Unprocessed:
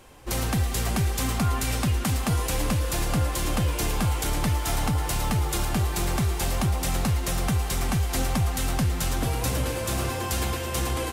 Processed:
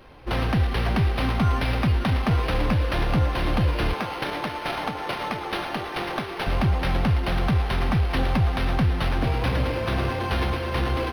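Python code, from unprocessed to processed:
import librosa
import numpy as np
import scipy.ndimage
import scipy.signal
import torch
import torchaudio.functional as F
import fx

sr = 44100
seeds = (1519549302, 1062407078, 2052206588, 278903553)

y = fx.highpass(x, sr, hz=330.0, slope=12, at=(3.93, 6.47))
y = np.interp(np.arange(len(y)), np.arange(len(y))[::6], y[::6])
y = y * 10.0 ** (3.0 / 20.0)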